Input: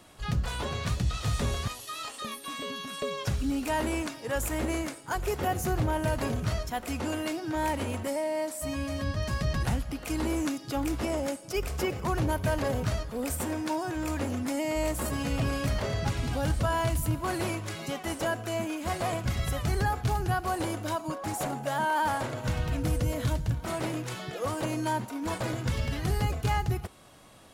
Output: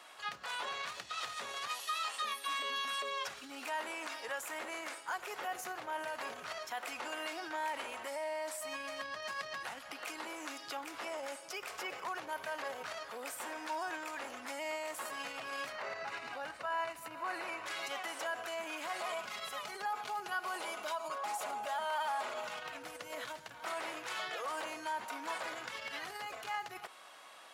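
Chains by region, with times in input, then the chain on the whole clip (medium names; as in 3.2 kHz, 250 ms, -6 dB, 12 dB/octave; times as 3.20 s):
15.72–17.66 s: tone controls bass 0 dB, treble -8 dB + band-stop 3.3 kHz, Q 9.1
19.00–22.62 s: peaking EQ 1.7 kHz -7 dB 0.25 oct + comb 4.8 ms, depth 55%
whole clip: peak limiter -29.5 dBFS; high-pass 960 Hz 12 dB/octave; treble shelf 4.7 kHz -11.5 dB; trim +6 dB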